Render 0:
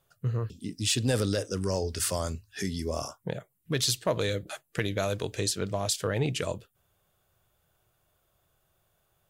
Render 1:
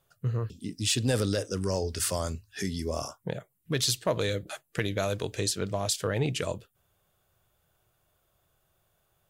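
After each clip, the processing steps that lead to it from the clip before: no audible change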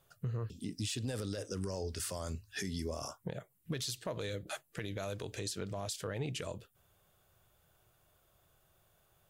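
compression 3:1, threshold -37 dBFS, peak gain reduction 11.5 dB; peak limiter -30 dBFS, peak gain reduction 10 dB; trim +1.5 dB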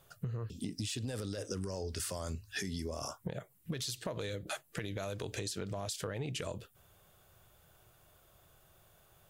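compression, threshold -41 dBFS, peak gain reduction 8.5 dB; trim +6 dB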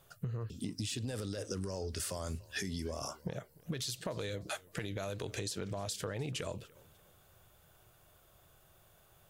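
modulated delay 298 ms, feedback 36%, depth 180 cents, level -23 dB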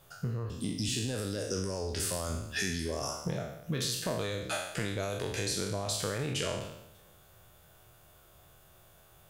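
spectral sustain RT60 0.84 s; trim +2.5 dB

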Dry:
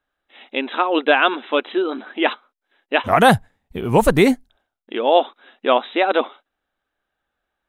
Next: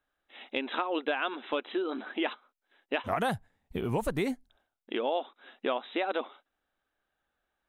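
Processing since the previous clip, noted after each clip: compression 4:1, threshold -25 dBFS, peak gain reduction 14.5 dB; trim -4 dB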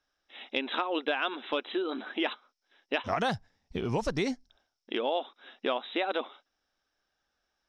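resonant low-pass 5.4 kHz, resonance Q 11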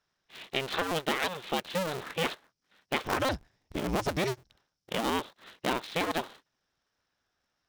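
cycle switcher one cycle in 2, inverted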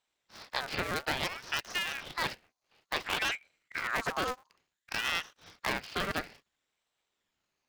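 ring modulator with a swept carrier 1.6 kHz, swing 45%, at 0.58 Hz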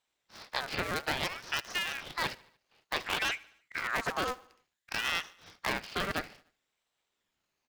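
feedback delay 74 ms, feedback 54%, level -23 dB

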